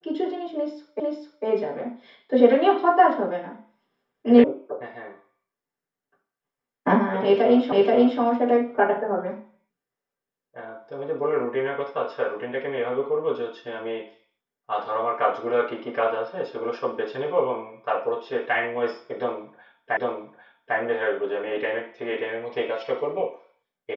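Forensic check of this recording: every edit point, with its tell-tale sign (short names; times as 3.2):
1 repeat of the last 0.45 s
4.44 sound cut off
7.72 repeat of the last 0.48 s
19.97 repeat of the last 0.8 s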